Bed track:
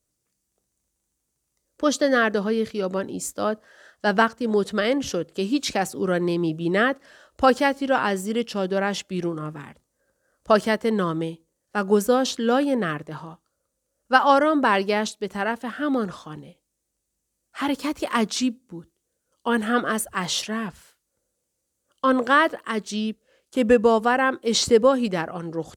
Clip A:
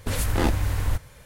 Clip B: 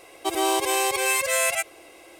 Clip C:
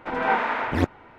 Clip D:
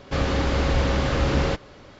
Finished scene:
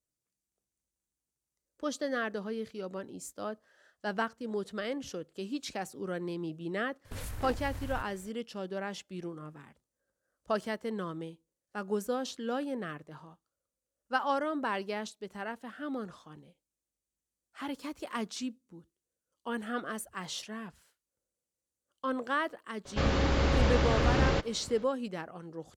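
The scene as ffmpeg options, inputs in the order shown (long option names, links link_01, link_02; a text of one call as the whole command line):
ffmpeg -i bed.wav -i cue0.wav -i cue1.wav -i cue2.wav -i cue3.wav -filter_complex "[0:a]volume=-13.5dB[link_01];[1:a]acompressor=threshold=-25dB:ratio=6:attack=3.2:release=140:knee=1:detection=peak,atrim=end=1.25,asetpts=PTS-STARTPTS,volume=-10dB,afade=type=in:duration=0.004:curve=hsin,afade=type=out:start_time=1.246:duration=0.004:curve=hsin,adelay=7050[link_02];[4:a]atrim=end=1.99,asetpts=PTS-STARTPTS,volume=-4.5dB,afade=type=in:duration=0.004:curve=hsin,afade=type=out:start_time=1.986:duration=0.004:curve=hsin,adelay=22850[link_03];[link_01][link_02][link_03]amix=inputs=3:normalize=0" out.wav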